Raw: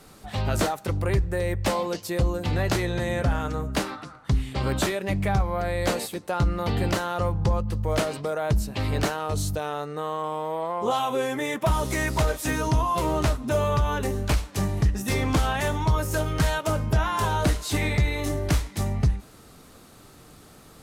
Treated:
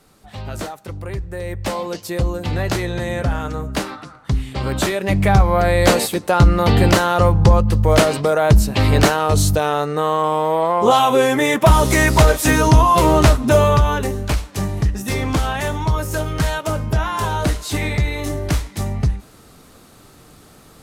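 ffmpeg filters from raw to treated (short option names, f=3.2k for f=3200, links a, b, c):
-af "volume=11.5dB,afade=t=in:st=1.17:d=0.9:silence=0.421697,afade=t=in:st=4.71:d=0.81:silence=0.398107,afade=t=out:st=13.49:d=0.68:silence=0.398107"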